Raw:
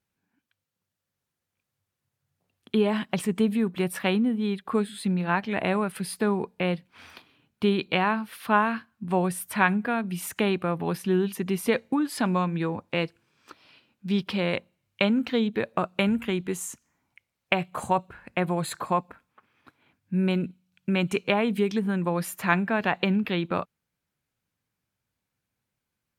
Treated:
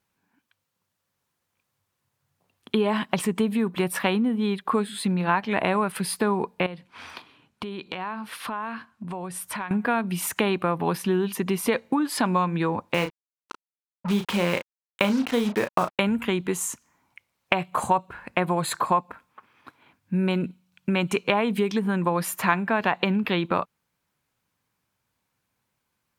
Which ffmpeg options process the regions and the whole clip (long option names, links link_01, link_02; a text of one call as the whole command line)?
ffmpeg -i in.wav -filter_complex "[0:a]asettb=1/sr,asplit=3[link_01][link_02][link_03];[link_01]atrim=end=6.664[link_04];[link_02]atrim=start=6.66:end=9.71,asetpts=PTS-STARTPTS,afade=type=in:duration=0.004:curve=qsin,afade=type=out:start_time=3.046:duration=0.004:curve=qsin,lowpass=11000,acompressor=threshold=-35dB:ratio=12:attack=3.2:release=140:knee=1:detection=peak[link_05];[link_03]atrim=start=9.706[link_06];[link_04][link_05]acrossfade=duration=0.004:curve1=hsin:curve2=qsin[link_07];[link_07][link_06]acrossfade=duration=0.004:curve1=qsin:curve2=hsin,asettb=1/sr,asplit=3[link_08][link_09][link_10];[link_08]atrim=end=12.944[link_11];[link_09]atrim=start=12.94:end=15.99,asetpts=PTS-STARTPTS,afade=type=in:duration=0.004:curve=qsin,afade=type=out:start_time=3.046:duration=0.004:curve=qsin,lowpass=3600,acrusher=bits=5:mix=0:aa=0.5,asplit=2[link_12][link_13];[link_13]adelay=34,volume=-8dB[link_14];[link_12][link_14]amix=inputs=2:normalize=0,atrim=end_sample=134505[link_15];[link_10]atrim=start=15.986[link_16];[link_11][link_15]acrossfade=duration=0.004:curve1=hsin:curve2=qsin[link_17];[link_17][link_16]acrossfade=duration=0.004:curve1=qsin:curve2=hsin,equalizer=frequency=1000:width_type=o:width=0.54:gain=5.5,acompressor=threshold=-26dB:ratio=2.5,lowshelf=frequency=180:gain=-4.5,volume=6dB" out.wav